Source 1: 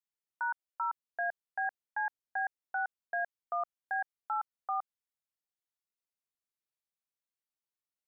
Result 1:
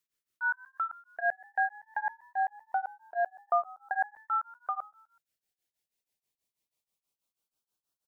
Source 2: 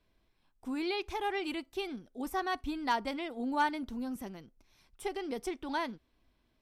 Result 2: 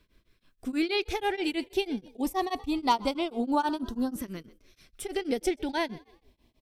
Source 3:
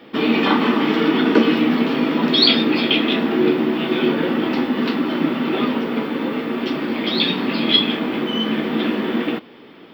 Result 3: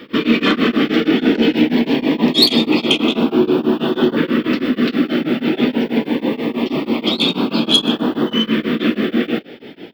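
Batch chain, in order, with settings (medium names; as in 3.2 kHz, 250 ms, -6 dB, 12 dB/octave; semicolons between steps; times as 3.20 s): in parallel at -2.5 dB: compression, threshold -30 dBFS; on the sum: saturation -7 dBFS; frequency-shifting echo 125 ms, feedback 40%, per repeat +57 Hz, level -21.5 dB; LFO notch saw up 0.24 Hz 750–2400 Hz; tremolo of two beating tones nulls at 6.2 Hz; trim +5.5 dB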